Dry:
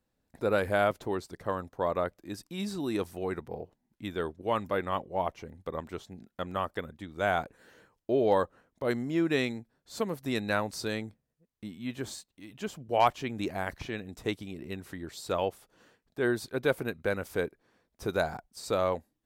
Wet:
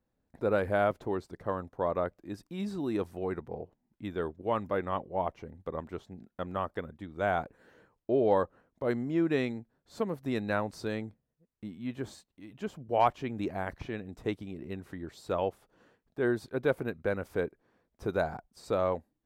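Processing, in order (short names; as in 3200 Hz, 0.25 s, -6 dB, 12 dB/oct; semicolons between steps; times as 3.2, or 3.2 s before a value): high shelf 2600 Hz -12 dB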